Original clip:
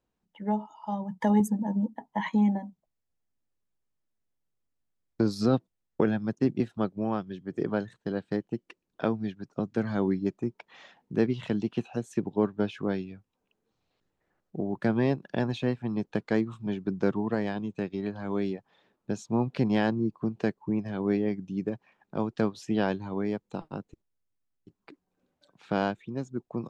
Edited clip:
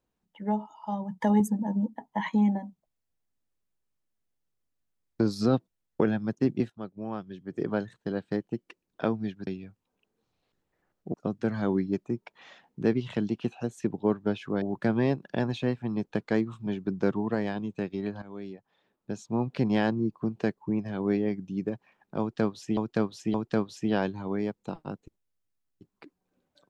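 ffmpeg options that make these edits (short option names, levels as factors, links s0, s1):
-filter_complex "[0:a]asplit=8[s0][s1][s2][s3][s4][s5][s6][s7];[s0]atrim=end=6.7,asetpts=PTS-STARTPTS,afade=t=out:st=6.696:d=0.004:c=hsin:silence=0.223872[s8];[s1]atrim=start=6.7:end=9.472,asetpts=PTS-STARTPTS,afade=t=in:d=1.06:silence=0.223872[s9];[s2]atrim=start=12.948:end=14.622[s10];[s3]atrim=start=9.468:end=12.952[s11];[s4]atrim=start=14.618:end=18.22,asetpts=PTS-STARTPTS,afade=t=out:st=3.598:d=0.004:c=hsin:silence=0.199526[s12];[s5]atrim=start=18.22:end=22.772,asetpts=PTS-STARTPTS,afade=t=in:d=1.49:silence=0.199526[s13];[s6]atrim=start=22.198:end=22.772[s14];[s7]atrim=start=22.198[s15];[s8][s9]concat=n=2:v=0:a=1[s16];[s16][s10]acrossfade=d=0.004:c1=hsin:c2=hsin[s17];[s17][s11]acrossfade=d=0.004:c1=hsin:c2=hsin[s18];[s12][s13]concat=n=2:v=0:a=1[s19];[s18][s19]acrossfade=d=0.004:c1=hsin:c2=hsin[s20];[s20][s14]acrossfade=d=0.004:c1=hsin:c2=hsin[s21];[s21][s15]acrossfade=d=0.004:c1=hsin:c2=hsin"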